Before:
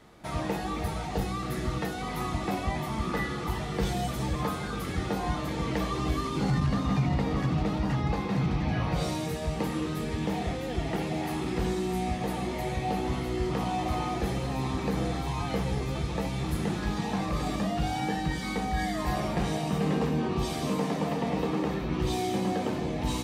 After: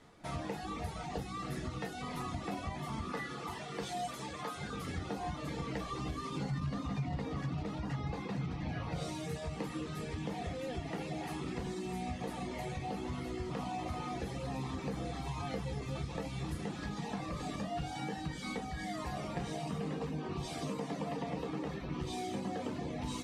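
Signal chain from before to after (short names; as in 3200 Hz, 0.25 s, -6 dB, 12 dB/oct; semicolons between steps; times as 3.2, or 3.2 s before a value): Chebyshev low-pass 9100 Hz, order 2; reverb removal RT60 0.62 s; 3.06–4.56 HPF 210 Hz -> 600 Hz 6 dB/oct; compressor 3:1, threshold -32 dBFS, peak gain reduction 7 dB; reverb RT60 0.25 s, pre-delay 4 ms, DRR 7.5 dB; gain -4 dB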